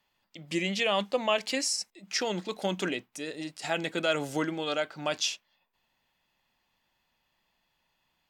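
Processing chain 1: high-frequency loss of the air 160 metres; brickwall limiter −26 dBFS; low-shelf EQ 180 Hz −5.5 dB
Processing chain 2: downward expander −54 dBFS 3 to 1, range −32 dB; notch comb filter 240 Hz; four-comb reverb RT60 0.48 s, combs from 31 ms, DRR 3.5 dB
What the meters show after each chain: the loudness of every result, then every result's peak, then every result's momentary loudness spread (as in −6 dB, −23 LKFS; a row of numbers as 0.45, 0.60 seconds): −38.0, −30.0 LKFS; −25.5, −12.5 dBFS; 5, 10 LU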